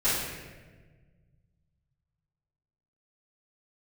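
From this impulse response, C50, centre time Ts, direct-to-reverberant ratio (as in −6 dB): −1.0 dB, 90 ms, −15.5 dB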